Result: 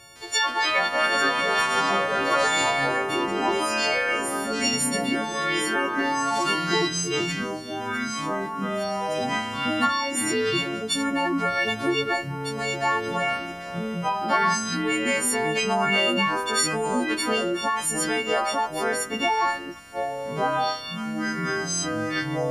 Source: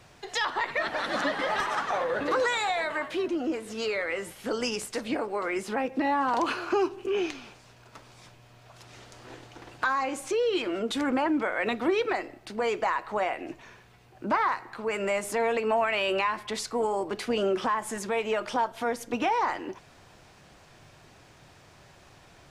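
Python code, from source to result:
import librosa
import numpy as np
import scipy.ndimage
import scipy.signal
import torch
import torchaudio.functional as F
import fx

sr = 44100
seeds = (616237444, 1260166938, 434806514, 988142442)

y = fx.freq_snap(x, sr, grid_st=4)
y = fx.echo_pitch(y, sr, ms=157, semitones=-6, count=2, db_per_echo=-3.0)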